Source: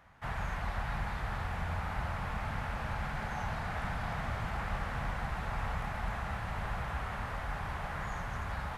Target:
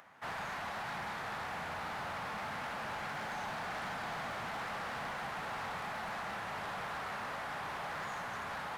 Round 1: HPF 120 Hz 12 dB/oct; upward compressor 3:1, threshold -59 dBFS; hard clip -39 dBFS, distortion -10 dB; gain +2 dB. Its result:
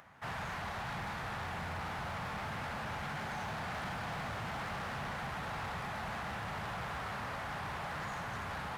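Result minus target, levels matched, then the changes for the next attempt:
125 Hz band +8.0 dB
change: HPF 250 Hz 12 dB/oct

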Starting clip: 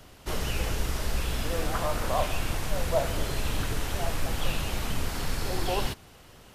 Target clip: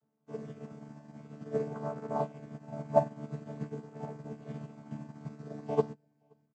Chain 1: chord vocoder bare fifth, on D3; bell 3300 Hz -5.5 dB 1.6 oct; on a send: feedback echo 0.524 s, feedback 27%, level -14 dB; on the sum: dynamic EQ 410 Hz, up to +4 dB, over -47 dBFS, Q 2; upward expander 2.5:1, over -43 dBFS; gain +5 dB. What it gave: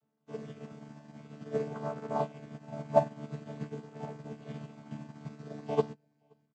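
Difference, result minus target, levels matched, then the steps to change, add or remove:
4000 Hz band +6.0 dB
change: bell 3300 Hz -13.5 dB 1.6 oct

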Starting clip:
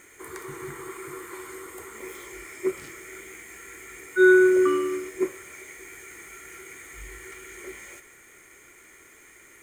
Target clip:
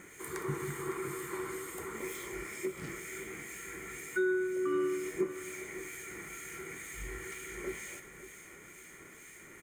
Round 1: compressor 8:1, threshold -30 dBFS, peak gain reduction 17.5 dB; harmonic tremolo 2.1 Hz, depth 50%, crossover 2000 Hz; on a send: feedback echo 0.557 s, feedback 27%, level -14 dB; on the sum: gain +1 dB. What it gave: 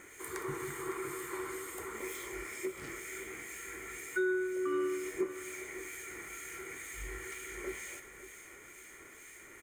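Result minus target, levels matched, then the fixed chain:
125 Hz band -6.0 dB
compressor 8:1, threshold -30 dBFS, peak gain reduction 17.5 dB; bell 170 Hz +11.5 dB 0.89 oct; harmonic tremolo 2.1 Hz, depth 50%, crossover 2000 Hz; on a send: feedback echo 0.557 s, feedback 27%, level -14 dB; on the sum: gain +1 dB

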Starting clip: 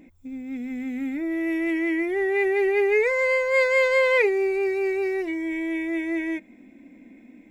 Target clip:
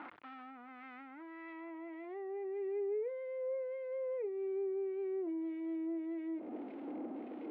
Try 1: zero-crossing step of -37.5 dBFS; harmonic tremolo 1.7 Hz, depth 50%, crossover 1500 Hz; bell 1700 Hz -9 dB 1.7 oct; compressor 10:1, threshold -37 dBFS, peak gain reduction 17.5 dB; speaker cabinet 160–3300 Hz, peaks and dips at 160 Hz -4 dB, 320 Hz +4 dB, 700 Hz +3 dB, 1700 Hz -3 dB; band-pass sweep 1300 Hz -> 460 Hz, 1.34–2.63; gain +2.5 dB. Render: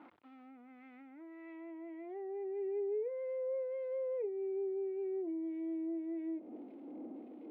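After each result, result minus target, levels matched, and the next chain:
2000 Hz band -7.5 dB; zero-crossing step: distortion -9 dB
zero-crossing step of -37.5 dBFS; harmonic tremolo 1.7 Hz, depth 50%, crossover 1500 Hz; compressor 10:1, threshold -37 dBFS, peak gain reduction 20 dB; speaker cabinet 160–3300 Hz, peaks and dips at 160 Hz -4 dB, 320 Hz +4 dB, 700 Hz +3 dB, 1700 Hz -3 dB; band-pass sweep 1300 Hz -> 460 Hz, 1.34–2.63; gain +2.5 dB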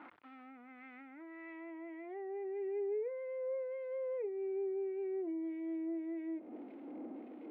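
zero-crossing step: distortion -9 dB
zero-crossing step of -27.5 dBFS; harmonic tremolo 1.7 Hz, depth 50%, crossover 1500 Hz; compressor 10:1, threshold -37 dBFS, peak gain reduction 20.5 dB; speaker cabinet 160–3300 Hz, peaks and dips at 160 Hz -4 dB, 320 Hz +4 dB, 700 Hz +3 dB, 1700 Hz -3 dB; band-pass sweep 1300 Hz -> 460 Hz, 1.34–2.63; gain +2.5 dB

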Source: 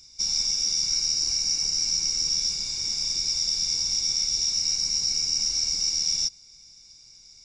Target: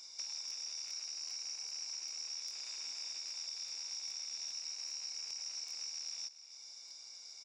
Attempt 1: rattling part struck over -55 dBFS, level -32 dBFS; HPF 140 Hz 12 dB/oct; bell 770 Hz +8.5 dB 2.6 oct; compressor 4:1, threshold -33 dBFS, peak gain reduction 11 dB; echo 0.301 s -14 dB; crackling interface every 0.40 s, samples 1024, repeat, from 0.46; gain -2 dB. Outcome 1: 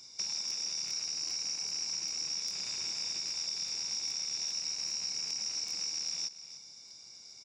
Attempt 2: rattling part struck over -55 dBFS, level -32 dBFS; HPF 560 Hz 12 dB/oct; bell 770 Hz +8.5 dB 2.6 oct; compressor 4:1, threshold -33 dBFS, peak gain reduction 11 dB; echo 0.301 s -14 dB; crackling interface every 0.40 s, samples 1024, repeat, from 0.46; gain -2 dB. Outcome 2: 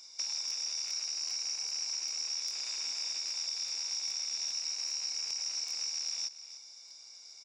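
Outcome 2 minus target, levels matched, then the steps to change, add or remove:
compressor: peak gain reduction -7 dB
change: compressor 4:1, threshold -42.5 dBFS, peak gain reduction 18 dB

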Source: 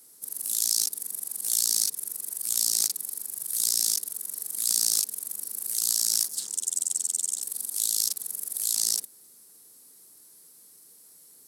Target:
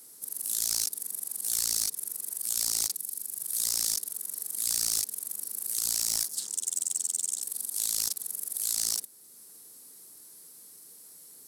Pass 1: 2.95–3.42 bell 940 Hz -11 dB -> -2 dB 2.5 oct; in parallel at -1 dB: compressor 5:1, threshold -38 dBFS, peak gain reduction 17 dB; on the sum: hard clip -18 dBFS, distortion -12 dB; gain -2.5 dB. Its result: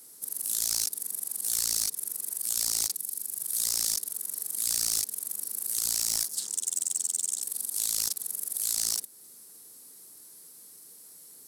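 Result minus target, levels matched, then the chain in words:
compressor: peak gain reduction -9 dB
2.95–3.42 bell 940 Hz -11 dB -> -2 dB 2.5 oct; in parallel at -1 dB: compressor 5:1, threshold -49 dBFS, peak gain reduction 25.5 dB; on the sum: hard clip -18 dBFS, distortion -13 dB; gain -2.5 dB

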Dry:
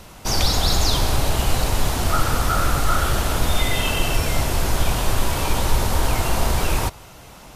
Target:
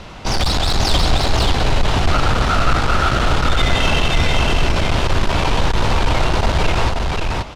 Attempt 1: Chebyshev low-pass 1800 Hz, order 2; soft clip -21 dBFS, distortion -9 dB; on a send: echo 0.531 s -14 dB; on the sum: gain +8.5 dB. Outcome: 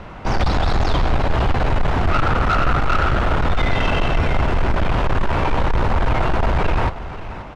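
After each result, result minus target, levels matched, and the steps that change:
4000 Hz band -8.5 dB; echo-to-direct -11.5 dB
change: Chebyshev low-pass 3700 Hz, order 2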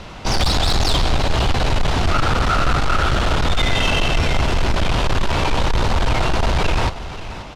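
echo-to-direct -11.5 dB
change: echo 0.531 s -2.5 dB

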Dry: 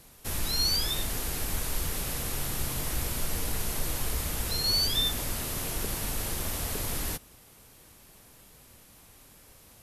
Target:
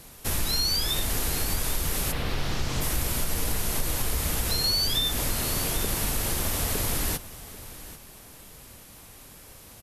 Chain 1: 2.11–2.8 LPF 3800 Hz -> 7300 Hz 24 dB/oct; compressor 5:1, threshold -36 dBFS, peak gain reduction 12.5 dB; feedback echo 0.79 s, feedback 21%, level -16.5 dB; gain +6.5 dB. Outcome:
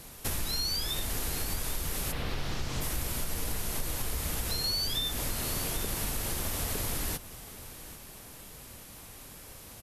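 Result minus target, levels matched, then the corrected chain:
compressor: peak gain reduction +6 dB
2.11–2.8 LPF 3800 Hz -> 7300 Hz 24 dB/oct; compressor 5:1, threshold -28.5 dBFS, peak gain reduction 6.5 dB; feedback echo 0.79 s, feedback 21%, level -16.5 dB; gain +6.5 dB

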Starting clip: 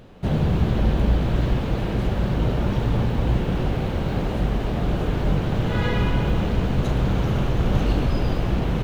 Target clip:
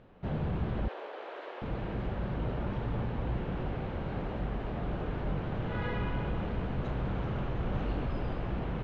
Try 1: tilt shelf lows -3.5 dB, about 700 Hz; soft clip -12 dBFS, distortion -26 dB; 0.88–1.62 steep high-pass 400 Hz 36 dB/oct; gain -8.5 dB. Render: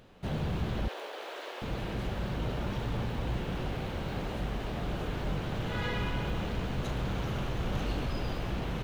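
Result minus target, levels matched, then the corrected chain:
2000 Hz band +3.0 dB
Bessel low-pass 1700 Hz, order 2; tilt shelf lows -3.5 dB, about 700 Hz; soft clip -12 dBFS, distortion -26 dB; 0.88–1.62 steep high-pass 400 Hz 36 dB/oct; gain -8.5 dB

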